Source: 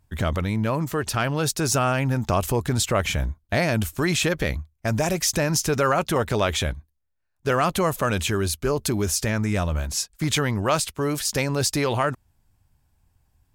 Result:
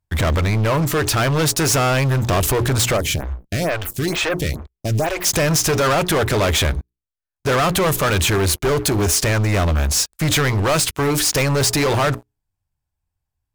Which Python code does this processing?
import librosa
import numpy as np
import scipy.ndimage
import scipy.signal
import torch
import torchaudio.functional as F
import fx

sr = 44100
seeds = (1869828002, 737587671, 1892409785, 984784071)

y = fx.peak_eq(x, sr, hz=230.0, db=-9.0, octaves=0.34)
y = fx.hum_notches(y, sr, base_hz=60, count=7)
y = fx.leveller(y, sr, passes=5)
y = fx.stagger_phaser(y, sr, hz=2.2, at=(2.96, 5.24), fade=0.02)
y = y * librosa.db_to_amplitude(-4.5)